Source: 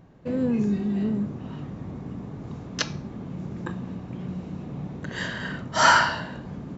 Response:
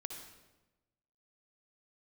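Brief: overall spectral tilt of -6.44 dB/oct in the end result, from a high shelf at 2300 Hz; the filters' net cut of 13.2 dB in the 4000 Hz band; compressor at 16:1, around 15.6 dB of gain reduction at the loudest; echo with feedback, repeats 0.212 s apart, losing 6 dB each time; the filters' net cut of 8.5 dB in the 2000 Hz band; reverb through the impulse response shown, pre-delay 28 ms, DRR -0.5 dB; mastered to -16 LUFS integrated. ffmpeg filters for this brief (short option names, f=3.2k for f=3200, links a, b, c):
-filter_complex "[0:a]equalizer=f=2k:t=o:g=-8,highshelf=f=2.3k:g=-7,equalizer=f=4k:t=o:g=-8.5,acompressor=threshold=-32dB:ratio=16,aecho=1:1:212|424|636|848|1060|1272:0.501|0.251|0.125|0.0626|0.0313|0.0157,asplit=2[a][b];[1:a]atrim=start_sample=2205,adelay=28[c];[b][c]afir=irnorm=-1:irlink=0,volume=2.5dB[d];[a][d]amix=inputs=2:normalize=0,volume=17dB"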